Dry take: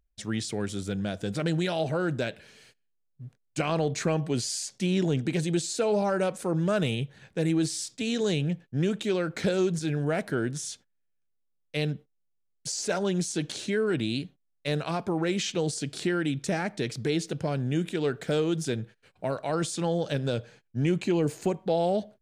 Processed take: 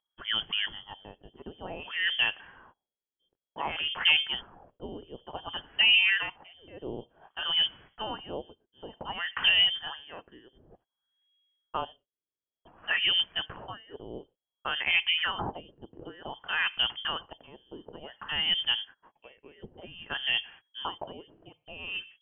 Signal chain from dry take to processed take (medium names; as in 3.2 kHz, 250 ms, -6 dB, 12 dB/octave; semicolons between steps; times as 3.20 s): frequency inversion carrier 3.3 kHz; LFO low-pass sine 0.55 Hz 380–2400 Hz